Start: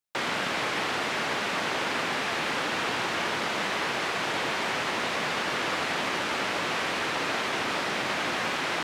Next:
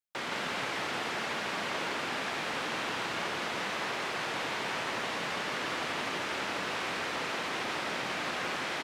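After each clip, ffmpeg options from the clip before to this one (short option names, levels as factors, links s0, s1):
-af "aecho=1:1:168:0.668,volume=0.447"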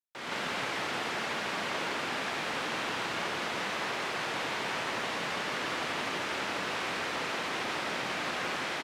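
-af "dynaudnorm=f=160:g=3:m=2.82,volume=0.376"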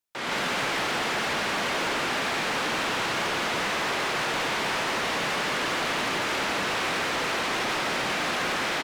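-af "volume=42.2,asoftclip=hard,volume=0.0237,volume=2.66"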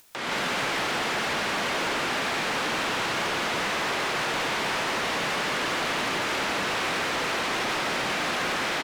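-af "acompressor=mode=upward:threshold=0.02:ratio=2.5"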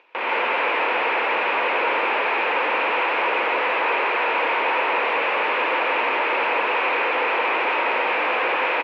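-af "aeval=exprs='max(val(0),0)':c=same,highpass=f=320:w=0.5412,highpass=f=320:w=1.3066,equalizer=f=500:t=q:w=4:g=8,equalizer=f=940:t=q:w=4:g=9,equalizer=f=2500:t=q:w=4:g=10,lowpass=f=2600:w=0.5412,lowpass=f=2600:w=1.3066,volume=2.51"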